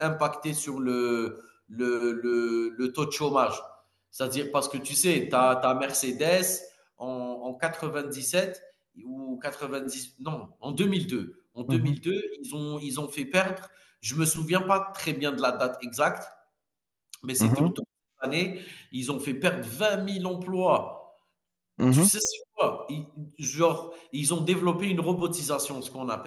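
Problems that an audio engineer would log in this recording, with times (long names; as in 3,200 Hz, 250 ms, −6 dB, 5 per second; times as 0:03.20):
0:22.25: click −15 dBFS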